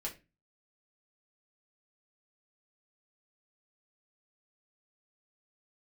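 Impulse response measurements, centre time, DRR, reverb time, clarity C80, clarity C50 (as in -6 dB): 15 ms, -2.5 dB, 0.25 s, 19.5 dB, 13.5 dB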